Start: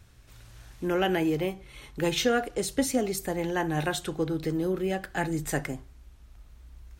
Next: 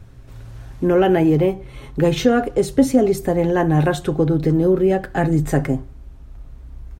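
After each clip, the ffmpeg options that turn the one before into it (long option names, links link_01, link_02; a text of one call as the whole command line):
ffmpeg -i in.wav -filter_complex "[0:a]tiltshelf=frequency=1300:gain=7.5,aecho=1:1:7.5:0.33,asplit=2[link_01][link_02];[link_02]alimiter=limit=-15dB:level=0:latency=1:release=34,volume=1dB[link_03];[link_01][link_03]amix=inputs=2:normalize=0" out.wav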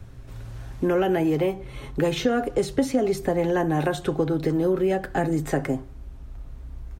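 ffmpeg -i in.wav -filter_complex "[0:a]acrossover=split=240|710|5400[link_01][link_02][link_03][link_04];[link_01]acompressor=threshold=-32dB:ratio=4[link_05];[link_02]acompressor=threshold=-23dB:ratio=4[link_06];[link_03]acompressor=threshold=-29dB:ratio=4[link_07];[link_04]acompressor=threshold=-43dB:ratio=4[link_08];[link_05][link_06][link_07][link_08]amix=inputs=4:normalize=0" out.wav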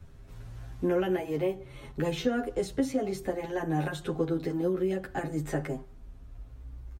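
ffmpeg -i in.wav -filter_complex "[0:a]asplit=2[link_01][link_02];[link_02]adelay=10.2,afreqshift=0.53[link_03];[link_01][link_03]amix=inputs=2:normalize=1,volume=-4dB" out.wav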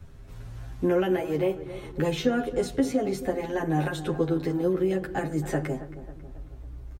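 ffmpeg -i in.wav -filter_complex "[0:a]asplit=2[link_01][link_02];[link_02]adelay=272,lowpass=frequency=1800:poles=1,volume=-13.5dB,asplit=2[link_03][link_04];[link_04]adelay=272,lowpass=frequency=1800:poles=1,volume=0.54,asplit=2[link_05][link_06];[link_06]adelay=272,lowpass=frequency=1800:poles=1,volume=0.54,asplit=2[link_07][link_08];[link_08]adelay=272,lowpass=frequency=1800:poles=1,volume=0.54,asplit=2[link_09][link_10];[link_10]adelay=272,lowpass=frequency=1800:poles=1,volume=0.54[link_11];[link_01][link_03][link_05][link_07][link_09][link_11]amix=inputs=6:normalize=0,volume=3.5dB" out.wav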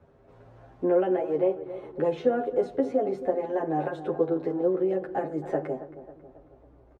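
ffmpeg -i in.wav -af "bandpass=frequency=580:width_type=q:width=1.4:csg=0,volume=4dB" out.wav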